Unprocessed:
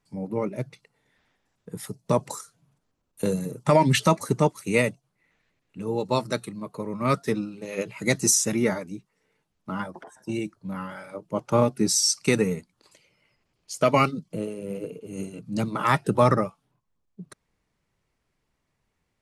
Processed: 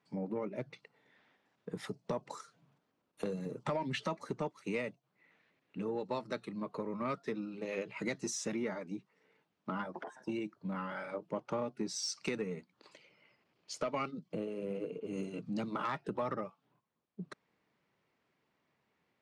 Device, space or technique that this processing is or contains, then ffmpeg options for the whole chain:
AM radio: -filter_complex "[0:a]highpass=190,lowpass=3.8k,acompressor=threshold=-36dB:ratio=4,asoftclip=type=tanh:threshold=-25.5dB,asettb=1/sr,asplit=3[a][b][c];[a]atrim=end=15.004[d];[b]atrim=start=15:end=15.86,asetpts=PTS-STARTPTS,afade=t=in:d=0.004:c=qsin,afade=t=out:st=0.856:d=0.004:c=qsin,adynamicequalizer=threshold=0.00178:dfrequency=3700:dqfactor=0.7:tfrequency=3700:tqfactor=0.7:attack=5:release=100:ratio=0.375:range=2:mode=boostabove:tftype=highshelf[e];[c]atrim=start=15.856[f];[d][e]acrossfade=d=0.004:c1=hsin:c2=qsin[g];[g][f]acrossfade=d=0.004:c1=qsin:c2=hsin,volume=1dB"

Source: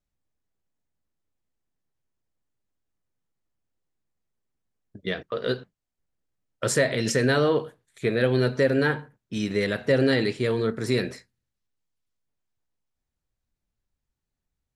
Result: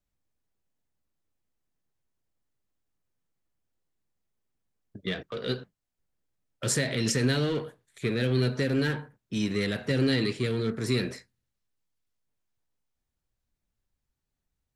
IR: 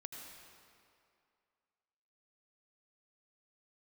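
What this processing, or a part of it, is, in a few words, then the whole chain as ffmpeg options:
one-band saturation: -filter_complex "[0:a]acrossover=split=340|2000[a][b][c];[b]asoftclip=type=tanh:threshold=-36.5dB[d];[a][d][c]amix=inputs=3:normalize=0"

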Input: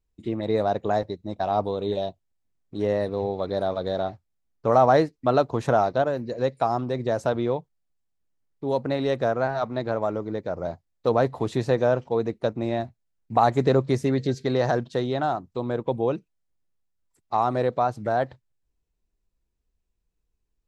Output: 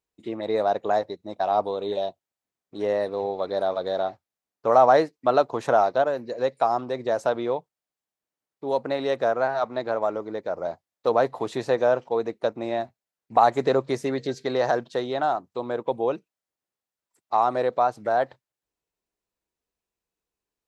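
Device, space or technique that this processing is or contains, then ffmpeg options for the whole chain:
filter by subtraction: -filter_complex "[0:a]asplit=2[a][b];[b]lowpass=680,volume=-1[c];[a][c]amix=inputs=2:normalize=0"

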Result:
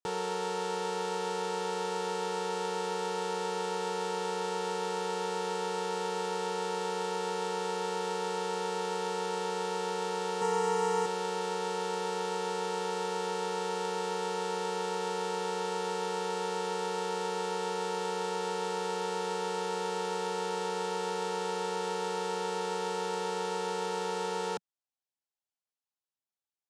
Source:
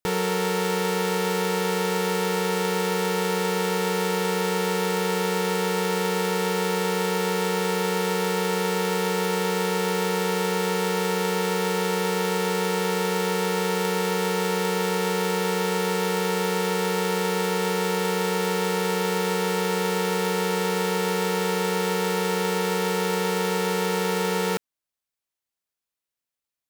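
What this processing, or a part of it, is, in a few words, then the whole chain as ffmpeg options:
car door speaker: -filter_complex "[0:a]asettb=1/sr,asplit=3[a][b][c];[a]atrim=end=10.414[d];[b]atrim=start=10.41:end=11.06,asetpts=PTS-STARTPTS,afade=t=in:d=0.004:c=qsin,afade=t=out:st=0.646:d=0.004:c=qsin,aecho=1:1:4.4:0.92,atrim=end_sample=28665[e];[c]atrim=start=11.056[f];[d][e]acrossfade=d=0.004:c1=hsin:c2=qsin[g];[g][f]acrossfade=d=0.004:c1=qsin:c2=hsin,highpass=93,equalizer=f=180:t=q:w=4:g=-7,equalizer=f=820:t=q:w=4:g=7,equalizer=f=2.1k:t=q:w=4:g=-9,lowpass=f=8.8k:w=0.5412,lowpass=f=8.8k:w=1.3066,volume=-9dB"

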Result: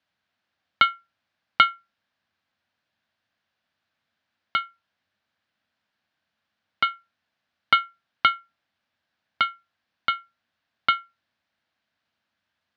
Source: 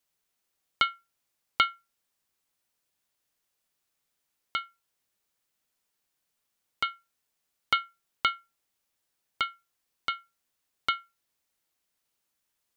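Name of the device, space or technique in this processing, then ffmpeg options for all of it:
guitar cabinet: -af "highpass=78,equalizer=f=92:t=q:w=4:g=8,equalizer=f=220:t=q:w=4:g=6,equalizer=f=410:t=q:w=4:g=-9,equalizer=f=670:t=q:w=4:g=4,equalizer=f=1.6k:t=q:w=4:g=7,lowpass=f=4.3k:w=0.5412,lowpass=f=4.3k:w=1.3066,volume=5dB"

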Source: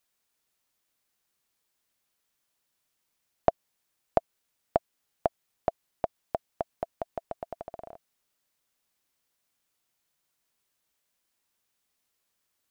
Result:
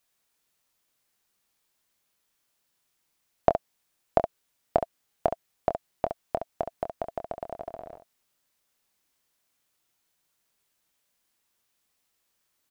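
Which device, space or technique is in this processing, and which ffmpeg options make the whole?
slapback doubling: -filter_complex "[0:a]asplit=3[a][b][c];[b]adelay=25,volume=-9dB[d];[c]adelay=68,volume=-8.5dB[e];[a][d][e]amix=inputs=3:normalize=0,volume=2dB"

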